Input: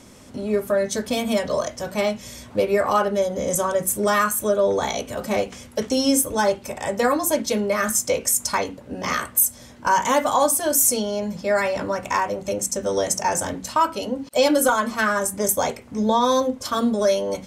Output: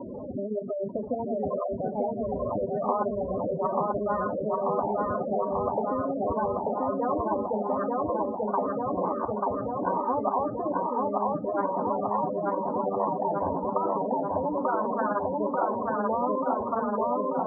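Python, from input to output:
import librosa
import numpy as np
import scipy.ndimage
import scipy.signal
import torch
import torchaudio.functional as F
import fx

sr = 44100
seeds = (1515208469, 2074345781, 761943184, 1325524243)

y = fx.level_steps(x, sr, step_db=11)
y = fx.low_shelf(y, sr, hz=190.0, db=-8.0)
y = fx.spec_gate(y, sr, threshold_db=-10, keep='strong')
y = scipy.signal.sosfilt(scipy.signal.cheby1(6, 1.0, 1000.0, 'lowpass', fs=sr, output='sos'), y)
y = fx.low_shelf(y, sr, hz=460.0, db=-11.0)
y = fx.echo_feedback(y, sr, ms=888, feedback_pct=49, wet_db=-4.0)
y = fx.spectral_comp(y, sr, ratio=4.0)
y = F.gain(torch.from_numpy(y), 5.0).numpy()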